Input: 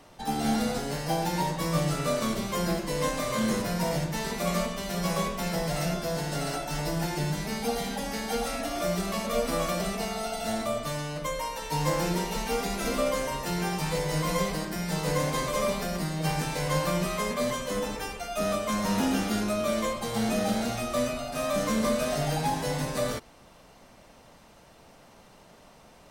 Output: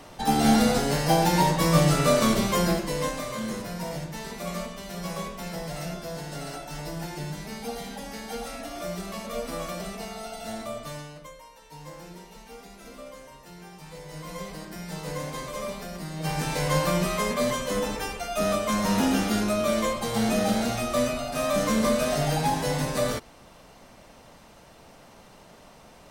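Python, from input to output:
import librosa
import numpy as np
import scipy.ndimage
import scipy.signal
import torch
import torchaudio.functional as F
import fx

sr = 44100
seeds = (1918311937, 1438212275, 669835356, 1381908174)

y = fx.gain(x, sr, db=fx.line((2.46, 7.0), (3.42, -5.0), (10.97, -5.0), (11.41, -16.0), (13.73, -16.0), (14.74, -6.0), (16.0, -6.0), (16.52, 3.0)))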